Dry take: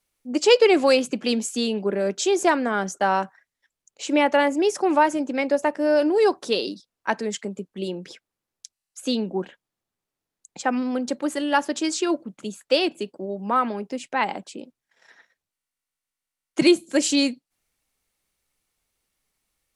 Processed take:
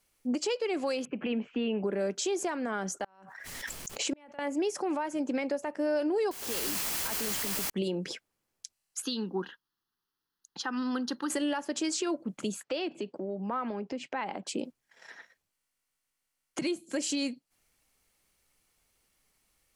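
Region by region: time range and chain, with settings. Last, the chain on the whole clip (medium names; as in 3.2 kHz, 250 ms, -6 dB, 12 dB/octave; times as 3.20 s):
1.05–1.84 s: elliptic low-pass 2.8 kHz, stop band 80 dB + compression 1.5:1, threshold -37 dBFS
3.04–4.39 s: inverted gate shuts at -15 dBFS, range -37 dB + swell ahead of each attack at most 35 dB/s
6.31–7.70 s: compression, threshold -37 dBFS + word length cut 6-bit, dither triangular
9.02–11.30 s: bass shelf 290 Hz -12 dB + static phaser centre 2.3 kHz, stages 6
12.63–14.47 s: high-pass 100 Hz + distance through air 130 m + compression 2.5:1, threshold -40 dBFS
whole clip: band-stop 3.7 kHz, Q 19; compression 12:1, threshold -30 dBFS; peak limiter -26.5 dBFS; trim +4 dB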